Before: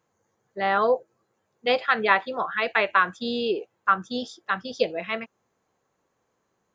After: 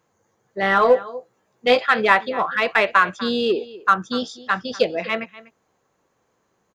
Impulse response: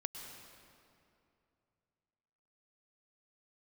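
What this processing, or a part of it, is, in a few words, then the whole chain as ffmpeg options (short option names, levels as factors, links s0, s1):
parallel distortion: -filter_complex "[0:a]asettb=1/sr,asplit=3[s0][s1][s2];[s0]atrim=end=0.614[s3];[s1]atrim=start=0.61:end=1.79,asetpts=PTS-STARTPTS,afade=t=in:d=0.004:c=qsin,afade=t=out:st=1.176:d=0.004:c=qsin,asplit=2[s4][s5];[s5]adelay=16,volume=0.596[s6];[s4][s6]amix=inputs=2:normalize=0,atrim=end_sample=52038[s7];[s2]atrim=start=1.786[s8];[s3][s7]acrossfade=d=0.004:c1=hsin:c2=qsin[s9];[s9][s8]acrossfade=d=0.004:c1=qsin:c2=hsin,aecho=1:1:245:0.112,asplit=2[s10][s11];[s11]asoftclip=type=hard:threshold=0.0891,volume=0.335[s12];[s10][s12]amix=inputs=2:normalize=0,volume=1.41"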